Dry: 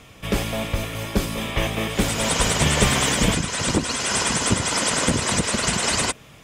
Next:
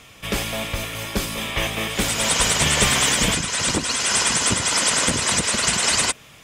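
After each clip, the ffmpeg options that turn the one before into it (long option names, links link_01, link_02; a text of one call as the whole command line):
ffmpeg -i in.wav -af "tiltshelf=frequency=970:gain=-4" out.wav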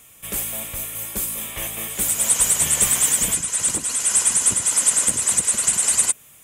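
ffmpeg -i in.wav -af "aexciter=amount=10.5:drive=2.3:freq=7200,volume=-9.5dB" out.wav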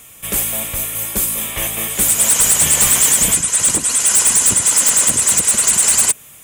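ffmpeg -i in.wav -af "aeval=exprs='0.224*(abs(mod(val(0)/0.224+3,4)-2)-1)':channel_layout=same,volume=7.5dB" out.wav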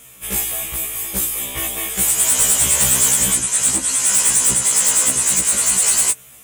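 ffmpeg -i in.wav -af "afftfilt=real='re*1.73*eq(mod(b,3),0)':imag='im*1.73*eq(mod(b,3),0)':win_size=2048:overlap=0.75" out.wav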